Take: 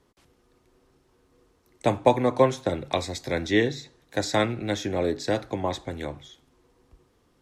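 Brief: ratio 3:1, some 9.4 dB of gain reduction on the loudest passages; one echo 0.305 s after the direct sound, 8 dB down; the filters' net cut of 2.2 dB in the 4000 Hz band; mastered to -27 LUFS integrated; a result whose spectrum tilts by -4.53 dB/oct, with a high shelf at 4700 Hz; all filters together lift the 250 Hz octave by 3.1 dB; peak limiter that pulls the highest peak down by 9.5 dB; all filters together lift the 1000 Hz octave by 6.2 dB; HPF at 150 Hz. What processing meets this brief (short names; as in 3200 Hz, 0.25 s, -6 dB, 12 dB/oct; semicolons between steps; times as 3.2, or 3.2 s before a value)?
HPF 150 Hz; bell 250 Hz +4 dB; bell 1000 Hz +7.5 dB; bell 4000 Hz -5 dB; high shelf 4700 Hz +4.5 dB; compressor 3:1, threshold -22 dBFS; limiter -17.5 dBFS; echo 0.305 s -8 dB; gain +3 dB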